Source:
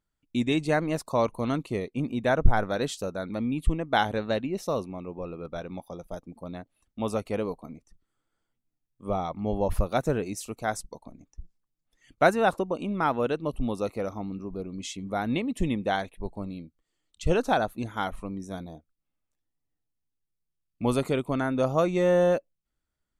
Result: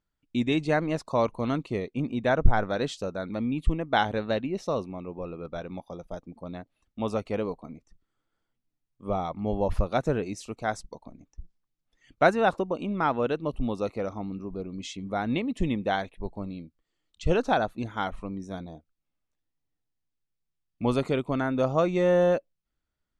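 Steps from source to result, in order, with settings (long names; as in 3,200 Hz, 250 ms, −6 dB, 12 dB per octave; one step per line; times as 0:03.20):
low-pass filter 5,800 Hz 12 dB per octave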